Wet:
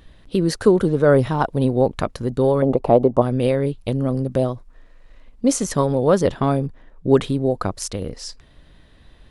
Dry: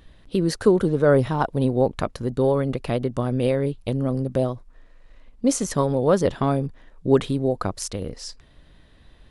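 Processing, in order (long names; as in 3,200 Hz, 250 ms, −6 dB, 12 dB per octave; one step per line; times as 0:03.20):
0:02.62–0:03.22: drawn EQ curve 130 Hz 0 dB, 870 Hz +13 dB, 1,700 Hz −10 dB
0:06.34–0:07.90: one half of a high-frequency compander decoder only
level +2.5 dB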